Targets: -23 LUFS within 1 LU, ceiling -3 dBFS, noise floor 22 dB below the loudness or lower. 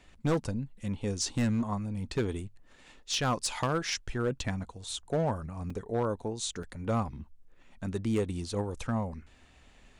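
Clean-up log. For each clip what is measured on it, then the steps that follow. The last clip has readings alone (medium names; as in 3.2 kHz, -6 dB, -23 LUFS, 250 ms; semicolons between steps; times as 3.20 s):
clipped samples 1.1%; clipping level -22.5 dBFS; dropouts 2; longest dropout 3.7 ms; loudness -33.0 LUFS; peak level -22.5 dBFS; loudness target -23.0 LUFS
-> clip repair -22.5 dBFS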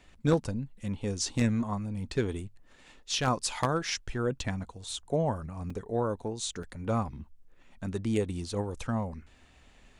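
clipped samples 0.0%; dropouts 2; longest dropout 3.7 ms
-> interpolate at 5.70/6.63 s, 3.7 ms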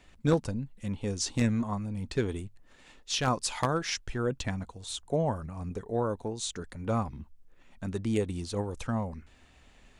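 dropouts 0; loudness -32.0 LUFS; peak level -13.5 dBFS; loudness target -23.0 LUFS
-> trim +9 dB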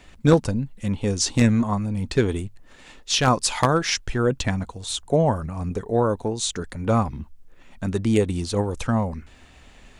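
loudness -23.0 LUFS; peak level -4.5 dBFS; noise floor -50 dBFS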